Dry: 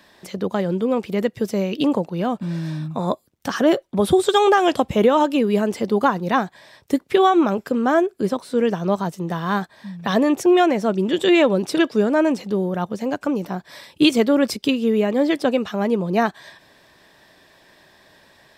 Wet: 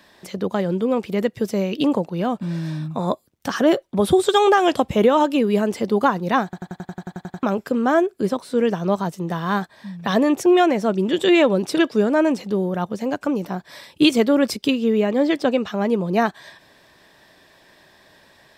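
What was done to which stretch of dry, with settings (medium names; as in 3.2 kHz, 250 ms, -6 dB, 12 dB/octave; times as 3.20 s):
6.44 s: stutter in place 0.09 s, 11 plays
14.76–15.87 s: peaking EQ 11 kHz -10.5 dB 0.4 oct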